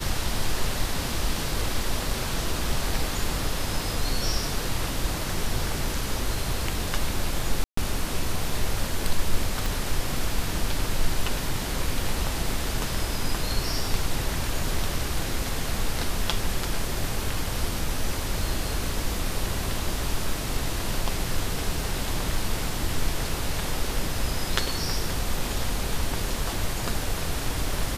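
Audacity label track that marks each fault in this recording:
7.640000	7.770000	gap 0.134 s
9.660000	9.660000	pop

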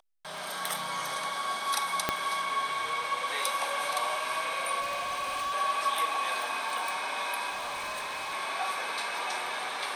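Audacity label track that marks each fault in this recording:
2.090000	2.090000	pop -10 dBFS
4.800000	5.540000	clipped -29.5 dBFS
7.490000	8.340000	clipped -32 dBFS

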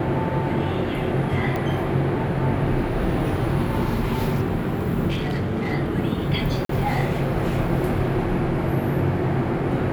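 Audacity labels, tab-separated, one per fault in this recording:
1.560000	1.560000	pop -15 dBFS
5.070000	5.730000	clipped -20.5 dBFS
6.650000	6.690000	gap 43 ms

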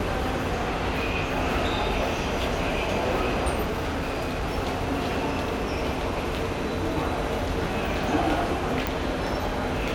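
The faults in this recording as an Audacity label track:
3.630000	4.460000	clipped -24.5 dBFS
8.870000	8.870000	pop

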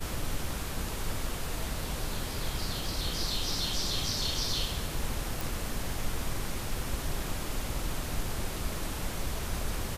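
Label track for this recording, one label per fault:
5.410000	5.410000	pop

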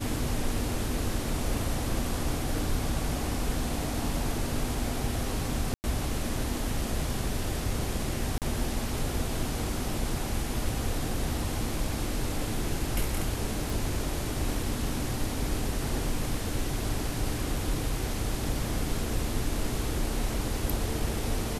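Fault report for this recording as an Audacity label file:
5.740000	5.840000	gap 99 ms
8.380000	8.420000	gap 38 ms
13.700000	13.700000	pop

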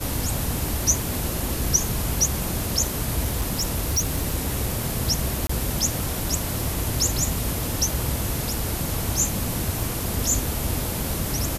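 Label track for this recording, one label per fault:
3.230000	4.360000	clipped -18 dBFS
5.470000	5.490000	gap 24 ms

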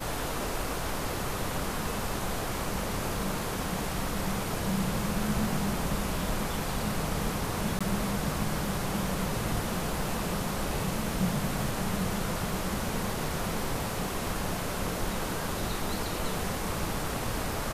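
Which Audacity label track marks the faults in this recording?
7.790000	7.810000	gap 16 ms

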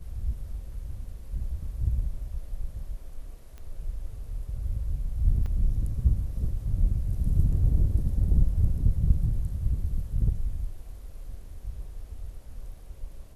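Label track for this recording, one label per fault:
3.580000	3.580000	pop -31 dBFS
5.460000	5.460000	gap 3.2 ms

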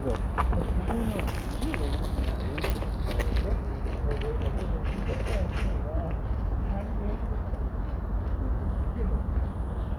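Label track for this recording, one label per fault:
2.700000	2.700000	pop

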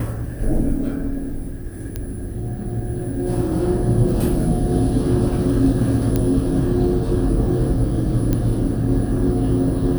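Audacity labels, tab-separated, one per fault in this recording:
1.960000	1.960000	pop -12 dBFS
4.390000	4.390000	gap 2.4 ms
6.160000	6.160000	pop -7 dBFS
8.330000	8.330000	pop -8 dBFS

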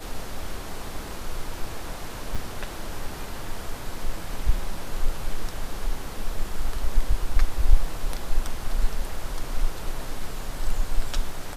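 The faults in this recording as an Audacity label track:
2.350000	2.360000	gap 5.9 ms

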